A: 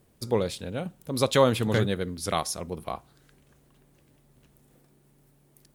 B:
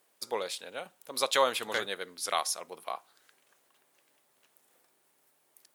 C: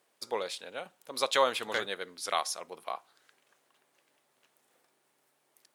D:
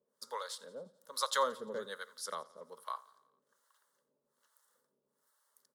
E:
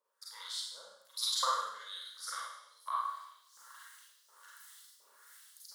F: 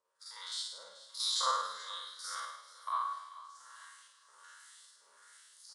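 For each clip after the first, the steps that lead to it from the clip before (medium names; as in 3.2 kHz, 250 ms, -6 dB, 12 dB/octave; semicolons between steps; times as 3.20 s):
high-pass 750 Hz 12 dB/octave
treble shelf 10 kHz -10 dB
static phaser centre 490 Hz, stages 8; harmonic tremolo 1.2 Hz, depth 100%, crossover 650 Hz; feedback delay 87 ms, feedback 59%, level -21.5 dB; trim +1 dB
reverse; upward compressor, threshold -41 dBFS; reverse; LFO high-pass saw up 1.4 Hz 990–5700 Hz; Schroeder reverb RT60 0.76 s, combs from 33 ms, DRR -6 dB; trim -5.5 dB
spectrogram pixelated in time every 50 ms; feedback delay 434 ms, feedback 34%, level -17 dB; trim +2 dB; AAC 96 kbps 22.05 kHz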